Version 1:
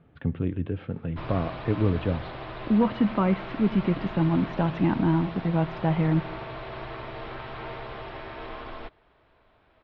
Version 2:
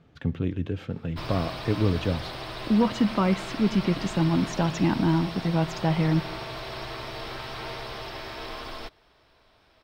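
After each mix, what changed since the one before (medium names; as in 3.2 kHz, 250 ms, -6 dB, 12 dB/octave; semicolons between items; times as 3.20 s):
master: remove Bessel low-pass 2.2 kHz, order 6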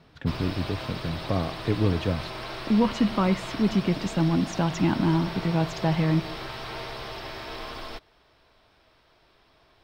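background: entry -0.90 s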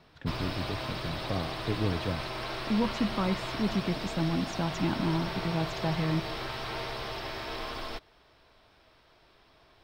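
speech -6.5 dB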